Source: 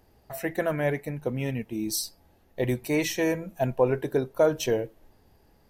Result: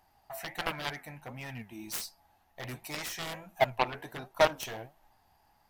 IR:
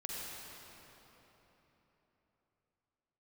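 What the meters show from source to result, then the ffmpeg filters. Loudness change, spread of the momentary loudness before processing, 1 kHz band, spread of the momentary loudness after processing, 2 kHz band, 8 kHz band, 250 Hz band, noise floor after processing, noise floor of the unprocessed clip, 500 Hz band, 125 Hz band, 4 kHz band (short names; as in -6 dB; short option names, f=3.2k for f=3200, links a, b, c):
-6.5 dB, 9 LU, +2.0 dB, 17 LU, -2.0 dB, -7.5 dB, -15.5 dB, -68 dBFS, -62 dBFS, -8.5 dB, -12.5 dB, -1.0 dB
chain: -af "flanger=delay=4.8:depth=7.8:regen=77:speed=1.4:shape=triangular,lowshelf=f=610:t=q:w=3:g=-8.5,aeval=exprs='0.158*(cos(1*acos(clip(val(0)/0.158,-1,1)))-cos(1*PI/2))+0.0398*(cos(7*acos(clip(val(0)/0.158,-1,1)))-cos(7*PI/2))':c=same,volume=3.5dB"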